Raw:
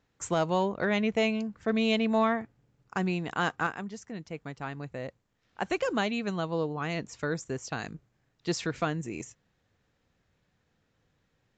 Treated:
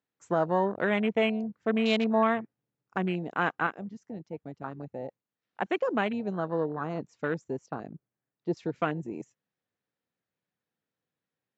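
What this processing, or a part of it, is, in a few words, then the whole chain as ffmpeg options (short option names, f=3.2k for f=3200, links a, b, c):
over-cleaned archive recording: -filter_complex "[0:a]highpass=170,lowpass=6.7k,afwtdn=0.02,asettb=1/sr,asplit=3[a][b][c];[a]atrim=end=7.664[d];[b]atrim=start=7.66:end=8.57,asetpts=PTS-STARTPTS,afade=t=in:d=0.004:c=qsin,afade=t=out:st=0.906:d=0.004:c=qsin,lowpass=f=1.8k:p=1[e];[c]atrim=start=8.566[f];[d][e]acrossfade=d=0.004:c1=hsin:c2=qsin[g];[g][f]acrossfade=d=0.004:c1=qsin:c2=hsin,volume=1.5dB"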